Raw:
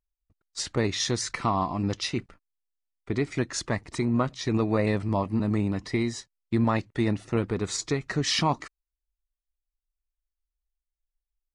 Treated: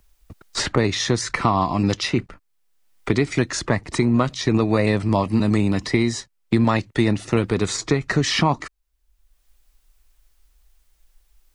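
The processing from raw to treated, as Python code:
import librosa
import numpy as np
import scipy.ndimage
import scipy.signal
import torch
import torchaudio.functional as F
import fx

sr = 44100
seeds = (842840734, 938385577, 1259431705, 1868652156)

y = fx.band_squash(x, sr, depth_pct=70)
y = y * 10.0 ** (6.5 / 20.0)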